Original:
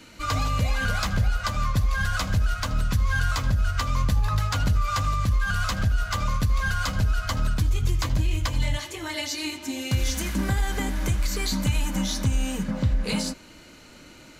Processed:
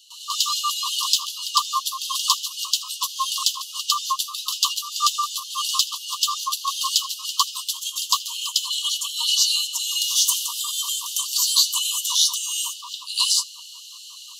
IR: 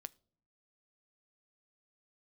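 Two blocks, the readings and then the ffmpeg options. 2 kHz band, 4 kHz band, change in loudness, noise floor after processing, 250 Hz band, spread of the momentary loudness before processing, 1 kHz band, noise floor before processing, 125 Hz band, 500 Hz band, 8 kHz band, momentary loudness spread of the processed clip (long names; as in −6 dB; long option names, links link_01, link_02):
−11.0 dB, +13.5 dB, +4.5 dB, −41 dBFS, below −40 dB, 4 LU, +4.0 dB, −48 dBFS, below −40 dB, below −40 dB, +14.0 dB, 8 LU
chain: -filter_complex "[0:a]asuperstop=centerf=1800:order=20:qfactor=1.1,asplit=2[link_01][link_02];[1:a]atrim=start_sample=2205,adelay=104[link_03];[link_02][link_03]afir=irnorm=-1:irlink=0,volume=17dB[link_04];[link_01][link_04]amix=inputs=2:normalize=0,afftfilt=real='re*gte(b*sr/1024,910*pow(2500/910,0.5+0.5*sin(2*PI*5.5*pts/sr)))':imag='im*gte(b*sr/1024,910*pow(2500/910,0.5+0.5*sin(2*PI*5.5*pts/sr)))':win_size=1024:overlap=0.75,volume=2dB"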